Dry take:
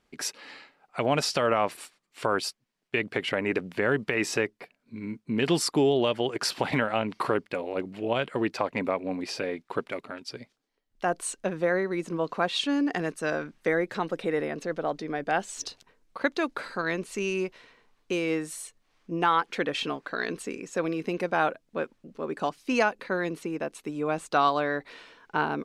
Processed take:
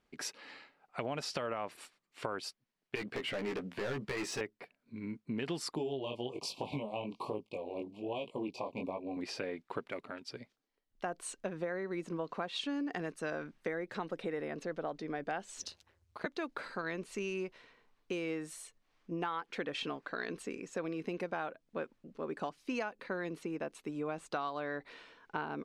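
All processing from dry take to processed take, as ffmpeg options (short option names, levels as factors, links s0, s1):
-filter_complex "[0:a]asettb=1/sr,asplit=3[s0][s1][s2];[s0]atrim=end=2.954[s3];[s1]atrim=start=2.95:end=4.41,asetpts=PTS-STARTPTS,afade=t=in:d=0.004:c=qsin,afade=t=out:st=1.456:d=0.004:c=qsin,volume=23.7,asoftclip=hard,volume=0.0422,asplit=2[s4][s5];[s5]adelay=15,volume=0.668[s6];[s4][s6]amix=inputs=2:normalize=0,atrim=end_sample=64386[s7];[s2]atrim=start=4.406[s8];[s3][s7]acrossfade=d=0.004:c1=hsin:c2=qsin[s9];[s9][s8]acrossfade=d=0.004:c1=qsin:c2=hsin,asettb=1/sr,asplit=3[s10][s11][s12];[s10]atrim=end=5.754[s13];[s11]atrim=start=5.75:end=9.17,asetpts=PTS-STARTPTS,afade=t=in:d=0.004:c=qsin,afade=t=out:st=3.416:d=0.004:c=qsin,asuperstop=centerf=1600:order=12:qfactor=1.3,flanger=delay=18.5:depth=6.3:speed=1.2[s14];[s12]atrim=start=9.166[s15];[s13][s14]acrossfade=d=0.004:c1=hsin:c2=qsin[s16];[s16][s15]acrossfade=d=0.004:c1=qsin:c2=hsin,asettb=1/sr,asplit=3[s17][s18][s19];[s17]atrim=end=15.624[s20];[s18]atrim=start=15.62:end=16.26,asetpts=PTS-STARTPTS,afade=t=in:d=0.004:c=qsin,afade=t=out:st=0.636:d=0.004:c=qsin,highshelf=f=4000:g=7.5,aeval=exprs='val(0)*sin(2*PI*83*n/s)':c=same[s21];[s19]atrim=start=16.256[s22];[s20][s21]acrossfade=d=0.004:c1=hsin:c2=qsin[s23];[s23][s22]acrossfade=d=0.004:c1=qsin:c2=hsin,highshelf=f=7100:g=-7,acompressor=threshold=0.0398:ratio=6,volume=0.531"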